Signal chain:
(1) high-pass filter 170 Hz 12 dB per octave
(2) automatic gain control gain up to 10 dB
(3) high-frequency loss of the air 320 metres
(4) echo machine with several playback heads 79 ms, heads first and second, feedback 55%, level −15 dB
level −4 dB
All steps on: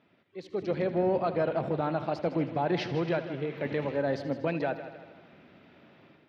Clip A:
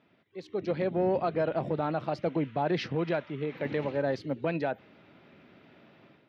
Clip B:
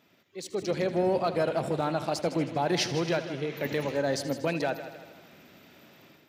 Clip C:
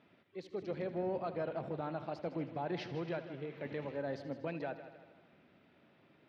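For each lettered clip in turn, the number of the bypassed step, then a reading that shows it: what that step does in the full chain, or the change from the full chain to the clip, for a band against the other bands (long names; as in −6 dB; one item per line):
4, echo-to-direct ratio −9.5 dB to none audible
3, 4 kHz band +8.0 dB
2, change in momentary loudness spread −2 LU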